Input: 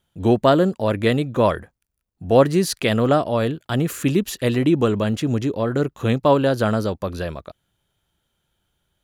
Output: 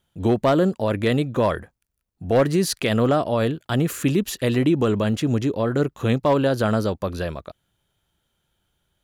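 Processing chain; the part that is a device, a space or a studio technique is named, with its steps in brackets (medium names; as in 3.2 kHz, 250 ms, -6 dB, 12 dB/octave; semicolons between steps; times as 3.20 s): clipper into limiter (hard clipper -8 dBFS, distortion -22 dB; peak limiter -11 dBFS, peak gain reduction 3 dB)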